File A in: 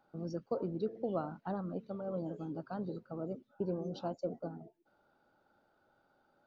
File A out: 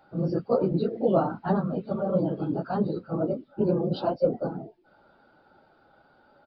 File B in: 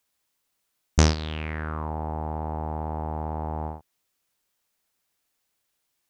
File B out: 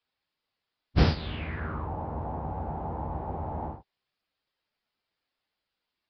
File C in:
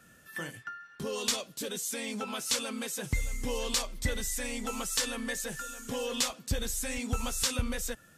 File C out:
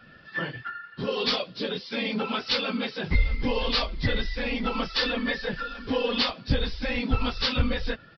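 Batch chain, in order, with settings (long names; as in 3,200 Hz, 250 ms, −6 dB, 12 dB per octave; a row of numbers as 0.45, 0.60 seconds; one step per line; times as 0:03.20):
random phases in long frames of 50 ms
downsampling to 11,025 Hz
normalise the peak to −9 dBFS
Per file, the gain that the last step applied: +12.5, −3.0, +7.5 decibels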